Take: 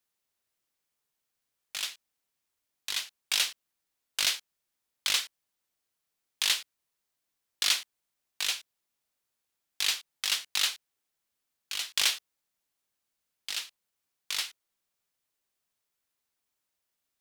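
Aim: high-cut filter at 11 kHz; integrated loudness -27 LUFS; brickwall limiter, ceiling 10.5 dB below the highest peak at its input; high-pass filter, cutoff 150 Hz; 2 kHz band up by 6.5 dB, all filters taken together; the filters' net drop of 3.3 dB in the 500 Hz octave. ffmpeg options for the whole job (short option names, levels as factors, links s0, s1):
-af "highpass=150,lowpass=11000,equalizer=f=500:t=o:g=-5,equalizer=f=2000:t=o:g=8.5,volume=1.78,alimiter=limit=0.237:level=0:latency=1"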